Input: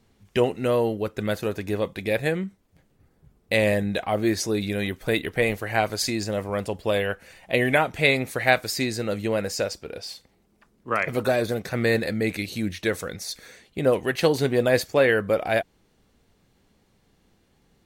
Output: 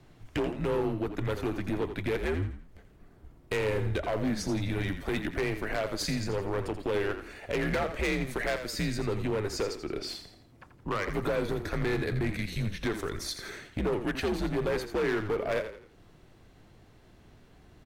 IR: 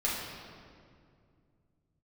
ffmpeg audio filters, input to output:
-filter_complex "[0:a]highpass=50,highshelf=f=3500:g=-10,acompressor=threshold=0.00708:ratio=2,afreqshift=-90,asoftclip=type=hard:threshold=0.0224,asplit=2[s0][s1];[s1]asplit=4[s2][s3][s4][s5];[s2]adelay=84,afreqshift=-35,volume=0.335[s6];[s3]adelay=168,afreqshift=-70,volume=0.133[s7];[s4]adelay=252,afreqshift=-105,volume=0.0537[s8];[s5]adelay=336,afreqshift=-140,volume=0.0214[s9];[s6][s7][s8][s9]amix=inputs=4:normalize=0[s10];[s0][s10]amix=inputs=2:normalize=0,volume=2.51"

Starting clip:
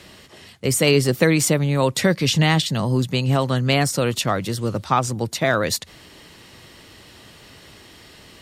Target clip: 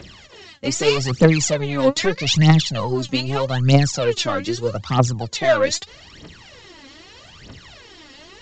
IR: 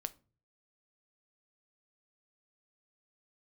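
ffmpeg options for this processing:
-af "aeval=exprs='0.75*(cos(1*acos(clip(val(0)/0.75,-1,1)))-cos(1*PI/2))+0.188*(cos(5*acos(clip(val(0)/0.75,-1,1)))-cos(5*PI/2))+0.0211*(cos(8*acos(clip(val(0)/0.75,-1,1)))-cos(8*PI/2))':c=same,aphaser=in_gain=1:out_gain=1:delay=3.8:decay=0.78:speed=0.8:type=triangular,aresample=16000,aresample=44100,volume=0.376"

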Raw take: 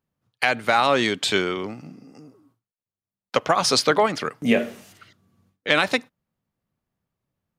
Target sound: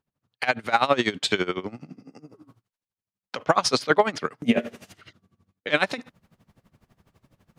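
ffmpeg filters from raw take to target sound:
-af "highshelf=f=10000:g=-12,areverse,acompressor=mode=upward:threshold=0.01:ratio=2.5,areverse,aeval=exprs='val(0)*pow(10,-19*(0.5-0.5*cos(2*PI*12*n/s))/20)':c=same,volume=1.41"

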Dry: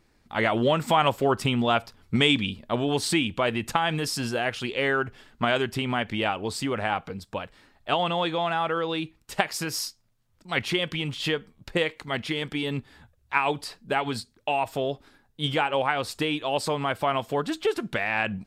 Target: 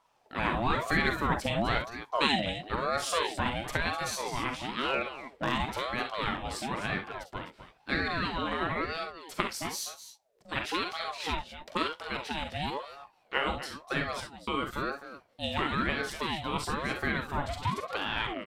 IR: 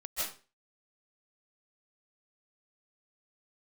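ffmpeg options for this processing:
-filter_complex "[0:a]asplit=3[s0][s1][s2];[s0]afade=t=out:st=4.85:d=0.02[s3];[s1]asoftclip=type=hard:threshold=0.168,afade=t=in:st=4.85:d=0.02,afade=t=out:st=5.51:d=0.02[s4];[s2]afade=t=in:st=5.51:d=0.02[s5];[s3][s4][s5]amix=inputs=3:normalize=0,aecho=1:1:42|53|66|252|270:0.398|0.282|0.266|0.237|0.119,aeval=exprs='val(0)*sin(2*PI*680*n/s+680*0.45/1*sin(2*PI*1*n/s))':c=same,volume=0.631"

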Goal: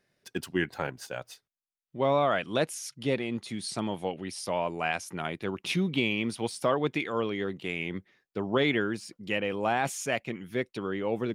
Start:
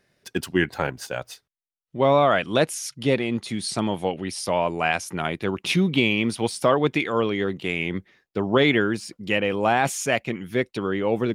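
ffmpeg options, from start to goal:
-af "equalizer=f=61:t=o:w=0.67:g=-8,volume=0.447"

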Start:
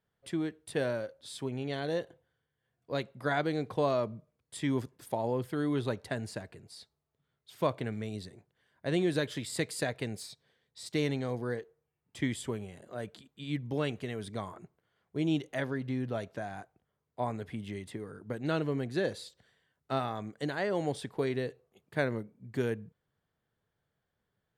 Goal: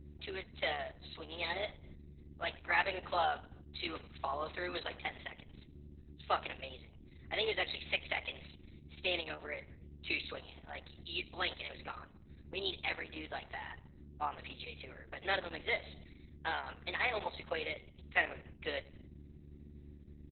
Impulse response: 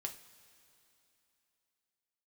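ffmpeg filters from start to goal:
-filter_complex "[0:a]highpass=f=260:w=0.5412,highpass=f=260:w=1.3066,aderivative,aresample=11025,aresample=44100,aeval=exprs='val(0)+0.000447*(sin(2*PI*60*n/s)+sin(2*PI*2*60*n/s)/2+sin(2*PI*3*60*n/s)/3+sin(2*PI*4*60*n/s)/4+sin(2*PI*5*60*n/s)/5)':c=same,aecho=1:1:123:0.0891,asplit=2[s0][s1];[1:a]atrim=start_sample=2205,afade=t=out:st=0.39:d=0.01,atrim=end_sample=17640,lowpass=3400[s2];[s1][s2]afir=irnorm=-1:irlink=0,volume=0.668[s3];[s0][s3]amix=inputs=2:normalize=0,asetrate=53361,aresample=44100,volume=5.01" -ar 48000 -c:a libopus -b:a 6k

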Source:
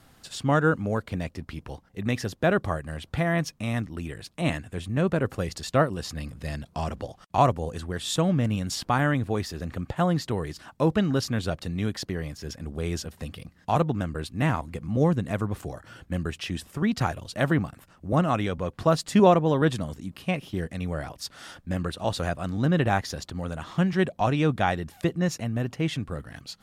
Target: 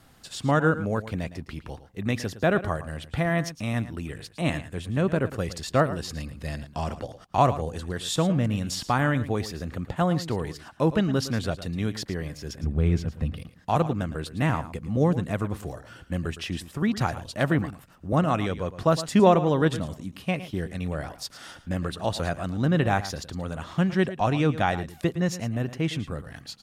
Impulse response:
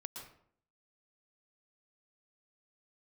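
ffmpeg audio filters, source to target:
-filter_complex "[0:a]asettb=1/sr,asplit=3[s0][s1][s2];[s0]atrim=end=12.634[s3];[s1]atrim=start=12.63:end=13.37,asetpts=PTS-STARTPTS,afade=t=in:d=0.004:c=qsin,afade=t=out:st=0.736:d=0.004:c=qsin,bass=f=250:g=10,treble=f=4000:g=-12[s4];[s2]atrim=start=13.366[s5];[s3][s4]acrossfade=d=0.004:c1=hsin:c2=qsin[s6];[s6][s5]acrossfade=d=0.004:c1=qsin:c2=hsin,asplit=2[s7][s8];[s8]aecho=0:1:111:0.2[s9];[s7][s9]amix=inputs=2:normalize=0"

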